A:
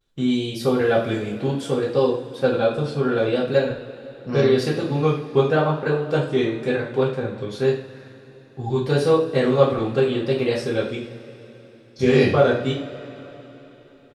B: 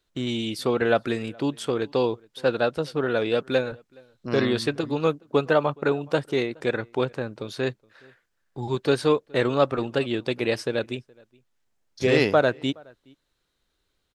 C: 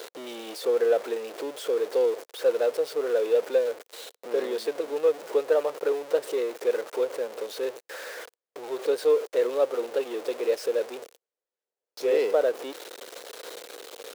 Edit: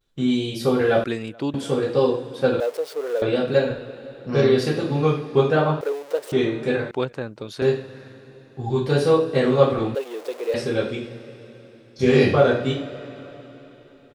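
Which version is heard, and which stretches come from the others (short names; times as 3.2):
A
1.04–1.54 from B
2.6–3.22 from C
5.81–6.32 from C
6.91–7.62 from B
9.95–10.54 from C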